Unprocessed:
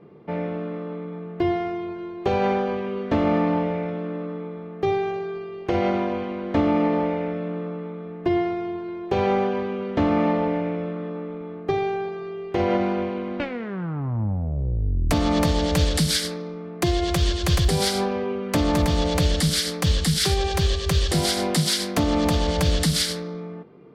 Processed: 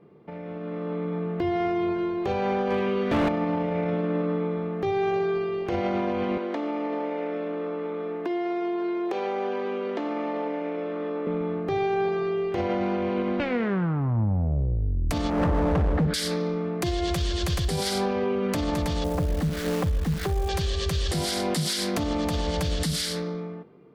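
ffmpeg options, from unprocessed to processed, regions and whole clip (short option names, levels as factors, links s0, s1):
-filter_complex "[0:a]asettb=1/sr,asplit=3[s0][s1][s2];[s0]atrim=end=2.704[s3];[s1]atrim=start=2.7:end=3.29,asetpts=PTS-STARTPTS,afade=t=in:d=0.004:c=qsin,afade=t=out:st=0.586:d=0.004:c=qsin,acrossover=split=3400[s4][s5];[s5]acompressor=threshold=0.00126:ratio=4:attack=1:release=60[s6];[s4][s6]amix=inputs=2:normalize=0,highshelf=f=2200:g=7.5,asoftclip=type=hard:threshold=0.1[s7];[s2]atrim=start=3.286[s8];[s3][s7]acrossfade=d=0.004:c1=hsin:c2=qsin[s9];[s9][s8]acrossfade=d=0.004:c1=qsin:c2=hsin,asettb=1/sr,asplit=3[s10][s11][s12];[s10]atrim=end=6.374[s13];[s11]atrim=start=6.37:end=11.27,asetpts=PTS-STARTPTS,afade=t=in:d=0.004:c=qsin,afade=t=out:st=4.896:d=0.004:c=qsin,acompressor=threshold=0.0316:ratio=12:attack=3.2:release=140:knee=1:detection=peak,highpass=f=260:w=0.5412,highpass=f=260:w=1.3066[s14];[s12]atrim=start=11.266[s15];[s13][s14]acrossfade=d=0.004:c1=hsin:c2=qsin[s16];[s16][s15]acrossfade=d=0.004:c1=qsin:c2=hsin,asettb=1/sr,asplit=3[s17][s18][s19];[s17]atrim=end=15.304[s20];[s18]atrim=start=15.3:end=16.14,asetpts=PTS-STARTPTS,afade=t=in:d=0.004:c=qsin,afade=t=out:st=0.836:d=0.004:c=qsin,lowpass=f=1500:w=0.5412,lowpass=f=1500:w=1.3066,asoftclip=type=hard:threshold=0.0841[s21];[s19]atrim=start=16.136[s22];[s20][s21]acrossfade=d=0.004:c1=hsin:c2=qsin[s23];[s23][s22]acrossfade=d=0.004:c1=qsin:c2=hsin,asettb=1/sr,asplit=3[s24][s25][s26];[s24]atrim=end=19.044[s27];[s25]atrim=start=19.04:end=20.49,asetpts=PTS-STARTPTS,afade=t=in:d=0.004:c=qsin,afade=t=out:st=1.446:d=0.004:c=qsin,lowpass=1100,asubboost=boost=4:cutoff=79,acrusher=bits=7:dc=4:mix=0:aa=0.000001[s28];[s26]atrim=start=20.486[s29];[s27][s28]acrossfade=d=0.004:c1=hsin:c2=qsin[s30];[s30][s29]acrossfade=d=0.004:c1=qsin:c2=hsin,acompressor=threshold=0.0447:ratio=6,alimiter=level_in=1.06:limit=0.0631:level=0:latency=1:release=33,volume=0.944,dynaudnorm=f=200:g=9:m=3.98,volume=0.531"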